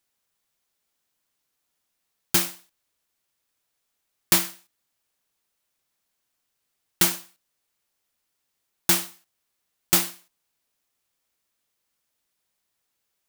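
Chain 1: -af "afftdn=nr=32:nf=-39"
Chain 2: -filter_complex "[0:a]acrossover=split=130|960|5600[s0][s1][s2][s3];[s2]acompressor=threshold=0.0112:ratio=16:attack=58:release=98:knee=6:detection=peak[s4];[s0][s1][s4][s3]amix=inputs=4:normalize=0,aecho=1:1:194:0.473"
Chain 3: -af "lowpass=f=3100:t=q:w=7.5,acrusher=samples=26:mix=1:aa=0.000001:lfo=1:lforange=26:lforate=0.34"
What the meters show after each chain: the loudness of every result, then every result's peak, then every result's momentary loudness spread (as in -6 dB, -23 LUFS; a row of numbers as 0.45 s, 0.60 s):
-22.5 LUFS, -23.5 LUFS, -24.0 LUFS; -4.0 dBFS, -3.5 dBFS, -3.0 dBFS; 13 LU, 15 LU, 13 LU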